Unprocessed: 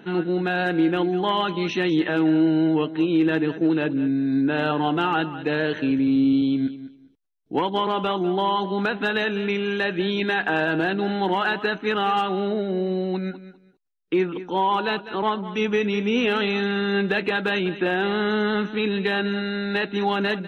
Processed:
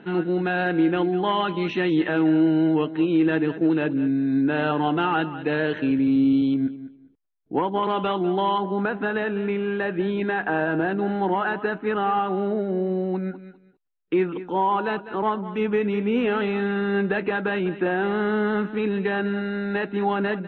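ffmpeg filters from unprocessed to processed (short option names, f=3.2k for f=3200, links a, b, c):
-af "asetnsamples=n=441:p=0,asendcmd='6.54 lowpass f 1700;7.83 lowpass f 3100;8.58 lowpass f 1600;13.39 lowpass f 2600;14.52 lowpass f 1800',lowpass=3k"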